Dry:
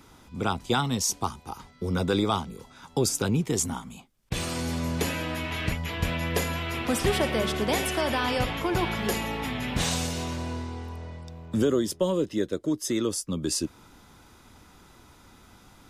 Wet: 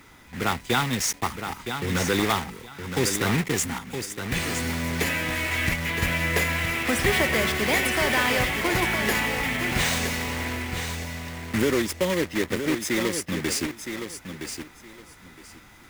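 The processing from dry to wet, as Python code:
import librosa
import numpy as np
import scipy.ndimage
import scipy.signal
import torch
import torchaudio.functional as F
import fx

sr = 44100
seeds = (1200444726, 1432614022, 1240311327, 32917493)

y = fx.block_float(x, sr, bits=3)
y = fx.peak_eq(y, sr, hz=2000.0, db=11.0, octaves=0.69)
y = fx.echo_feedback(y, sr, ms=966, feedback_pct=20, wet_db=-8.0)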